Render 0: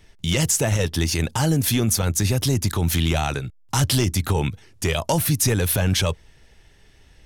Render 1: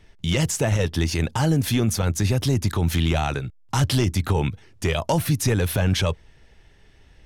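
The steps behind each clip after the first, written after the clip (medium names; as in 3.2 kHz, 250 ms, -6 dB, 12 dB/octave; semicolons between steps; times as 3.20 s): treble shelf 5.5 kHz -10 dB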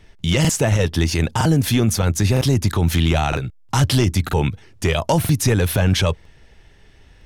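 crackling interface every 0.96 s, samples 2048, repeat, from 0.40 s; trim +4 dB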